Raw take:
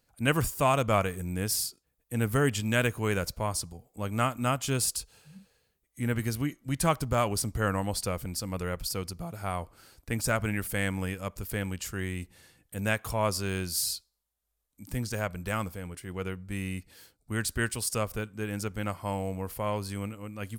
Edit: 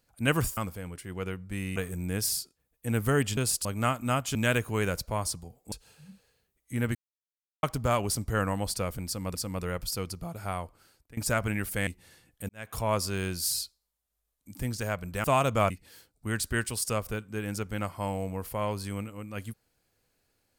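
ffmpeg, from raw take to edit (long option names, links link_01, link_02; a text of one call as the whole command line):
ffmpeg -i in.wav -filter_complex "[0:a]asplit=15[link_01][link_02][link_03][link_04][link_05][link_06][link_07][link_08][link_09][link_10][link_11][link_12][link_13][link_14][link_15];[link_01]atrim=end=0.572[link_16];[link_02]atrim=start=15.558:end=16.752[link_17];[link_03]atrim=start=1.028:end=2.642[link_18];[link_04]atrim=start=4.708:end=4.992[link_19];[link_05]atrim=start=4.008:end=4.712[link_20];[link_06]atrim=start=2.638:end=4.012[link_21];[link_07]atrim=start=4.988:end=6.22,asetpts=PTS-STARTPTS,afade=type=out:start_time=1.228:duration=0.004:curve=hsin[link_22];[link_08]atrim=start=6.22:end=6.9,asetpts=PTS-STARTPTS,volume=0[link_23];[link_09]atrim=start=6.9:end=8.622,asetpts=PTS-STARTPTS,afade=type=in:duration=0.004:curve=hsin[link_24];[link_10]atrim=start=8.328:end=10.15,asetpts=PTS-STARTPTS,afade=type=out:start_time=1.112:duration=0.71:silence=0.0891251[link_25];[link_11]atrim=start=10.15:end=10.852,asetpts=PTS-STARTPTS,afade=type=in:duration=0.004:curve=hsin:silence=0.0891251[link_26];[link_12]atrim=start=12.188:end=12.81,asetpts=PTS-STARTPTS,afade=type=out:start_time=0.618:duration=0.004:curve=hsin[link_27];[link_13]atrim=start=12.81:end=15.562,asetpts=PTS-STARTPTS,afade=type=in:duration=0.26:curve=qua[link_28];[link_14]atrim=start=0.568:end=1.032[link_29];[link_15]atrim=start=16.748[link_30];[link_16][link_17]acrossfade=duration=0.004:curve1=hsin:curve2=hsin[link_31];[link_31][link_18]acrossfade=duration=0.004:curve1=hsin:curve2=hsin[link_32];[link_32][link_19]acrossfade=duration=0.004:curve1=hsin:curve2=hsin[link_33];[link_33][link_20]acrossfade=duration=0.004:curve1=hsin:curve2=hsin[link_34];[link_34][link_21]acrossfade=duration=0.004:curve1=hsin:curve2=hsin[link_35];[link_22][link_23][link_24]concat=n=3:v=0:a=1[link_36];[link_35][link_36]acrossfade=duration=0.004:curve1=hsin:curve2=hsin[link_37];[link_25][link_26]concat=n=2:v=0:a=1[link_38];[link_37][link_38]acrossfade=duration=0.004:curve1=hsin:curve2=hsin[link_39];[link_27][link_28]concat=n=2:v=0:a=1[link_40];[link_39][link_40]acrossfade=duration=0.004:curve1=hsin:curve2=hsin[link_41];[link_41][link_29]acrossfade=duration=0.004:curve1=hsin:curve2=hsin[link_42];[link_42][link_30]acrossfade=duration=0.004:curve1=hsin:curve2=hsin" out.wav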